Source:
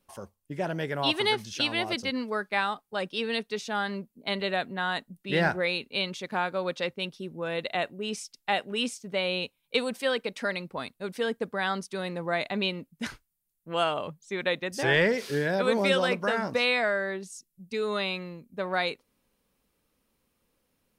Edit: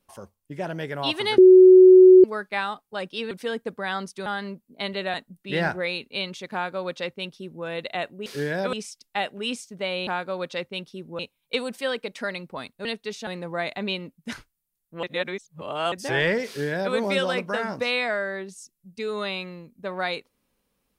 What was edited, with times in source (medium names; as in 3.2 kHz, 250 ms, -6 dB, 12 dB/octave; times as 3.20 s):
1.38–2.24 s: bleep 371 Hz -7 dBFS
3.31–3.73 s: swap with 11.06–12.01 s
4.61–4.94 s: delete
6.33–7.45 s: copy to 9.40 s
13.77–14.66 s: reverse
15.21–15.68 s: copy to 8.06 s